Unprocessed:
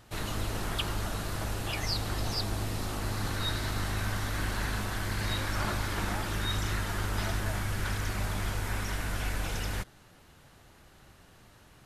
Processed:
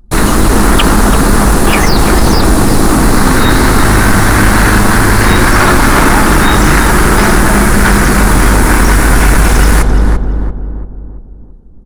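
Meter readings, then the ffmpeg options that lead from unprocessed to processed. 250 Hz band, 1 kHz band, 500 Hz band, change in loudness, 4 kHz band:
+29.0 dB, +26.5 dB, +27.0 dB, +24.5 dB, +18.0 dB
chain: -filter_complex "[0:a]acrossover=split=3900[a][b];[b]acompressor=threshold=-46dB:ratio=4:attack=1:release=60[c];[a][c]amix=inputs=2:normalize=0,anlmdn=0.1,equalizer=f=100:t=o:w=0.67:g=-10,equalizer=f=250:t=o:w=0.67:g=3,equalizer=f=630:t=o:w=0.67:g=-6,equalizer=f=10k:t=o:w=0.67:g=10,asplit=2[d][e];[e]adelay=340,lowpass=f=1.2k:p=1,volume=-3dB,asplit=2[f][g];[g]adelay=340,lowpass=f=1.2k:p=1,volume=0.49,asplit=2[h][i];[i]adelay=340,lowpass=f=1.2k:p=1,volume=0.49,asplit=2[j][k];[k]adelay=340,lowpass=f=1.2k:p=1,volume=0.49,asplit=2[l][m];[m]adelay=340,lowpass=f=1.2k:p=1,volume=0.49,asplit=2[n][o];[o]adelay=340,lowpass=f=1.2k:p=1,volume=0.49[p];[d][f][h][j][l][n][p]amix=inputs=7:normalize=0,acrossover=split=280|440|3500[q][r][s][t];[s]adynamicsmooth=sensitivity=4.5:basefreq=1.3k[u];[t]aeval=exprs='(tanh(158*val(0)+0.25)-tanh(0.25))/158':c=same[v];[q][r][u][v]amix=inputs=4:normalize=0,apsyclip=31dB,volume=-1.5dB"

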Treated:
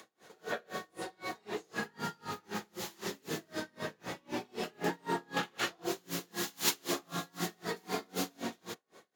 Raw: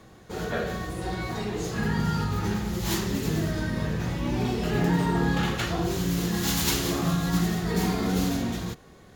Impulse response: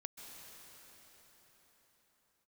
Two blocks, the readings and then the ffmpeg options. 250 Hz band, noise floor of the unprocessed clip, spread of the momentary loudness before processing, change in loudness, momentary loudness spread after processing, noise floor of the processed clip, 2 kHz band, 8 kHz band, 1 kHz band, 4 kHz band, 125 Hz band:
-15.0 dB, -51 dBFS, 7 LU, -11.0 dB, 9 LU, -71 dBFS, -6.5 dB, -7.0 dB, -7.0 dB, -7.0 dB, -21.5 dB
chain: -filter_complex "[0:a]highpass=360,acrossover=split=560|1500[a][b][c];[c]acompressor=mode=upward:threshold=-55dB:ratio=2.5[d];[a][b][d]amix=inputs=3:normalize=0,aeval=exprs='val(0)*pow(10,-34*(0.5-0.5*cos(2*PI*3.9*n/s))/20)':c=same"

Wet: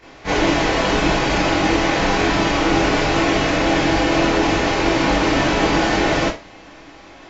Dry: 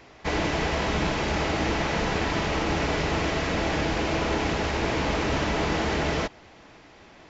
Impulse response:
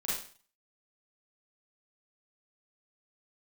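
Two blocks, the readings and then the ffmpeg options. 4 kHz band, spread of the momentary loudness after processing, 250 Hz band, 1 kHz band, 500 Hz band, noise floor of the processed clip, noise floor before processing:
+9.0 dB, 1 LU, +10.0 dB, +9.0 dB, +8.5 dB, -42 dBFS, -51 dBFS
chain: -filter_complex "[1:a]atrim=start_sample=2205,asetrate=70560,aresample=44100[a];[0:a][a]afir=irnorm=-1:irlink=0,volume=8dB"

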